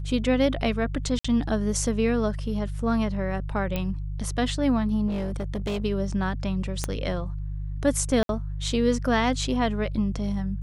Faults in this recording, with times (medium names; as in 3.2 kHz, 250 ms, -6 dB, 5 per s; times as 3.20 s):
hum 50 Hz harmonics 3 -31 dBFS
1.19–1.25 s: dropout 55 ms
3.76 s: pop -14 dBFS
5.07–5.82 s: clipped -24.5 dBFS
6.84 s: pop -12 dBFS
8.23–8.29 s: dropout 62 ms